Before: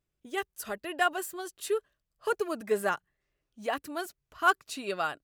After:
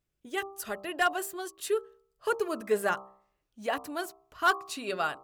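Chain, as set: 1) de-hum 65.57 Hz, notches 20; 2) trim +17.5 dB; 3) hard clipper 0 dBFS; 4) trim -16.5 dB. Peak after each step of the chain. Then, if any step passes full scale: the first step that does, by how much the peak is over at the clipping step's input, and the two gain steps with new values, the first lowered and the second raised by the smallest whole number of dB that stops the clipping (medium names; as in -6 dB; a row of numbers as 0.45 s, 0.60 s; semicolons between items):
-12.5 dBFS, +5.0 dBFS, 0.0 dBFS, -16.5 dBFS; step 2, 5.0 dB; step 2 +12.5 dB, step 4 -11.5 dB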